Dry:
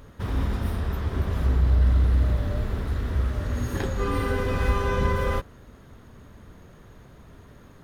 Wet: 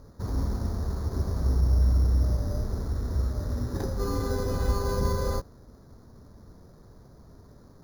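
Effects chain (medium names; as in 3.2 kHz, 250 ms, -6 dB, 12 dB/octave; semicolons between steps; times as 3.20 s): low-pass 1.1 kHz 12 dB/octave; careless resampling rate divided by 8×, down filtered, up hold; trim -2.5 dB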